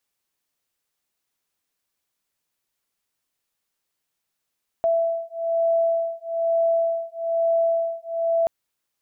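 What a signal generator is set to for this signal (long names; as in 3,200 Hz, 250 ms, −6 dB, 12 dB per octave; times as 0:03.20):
two tones that beat 665 Hz, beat 1.1 Hz, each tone −22.5 dBFS 3.63 s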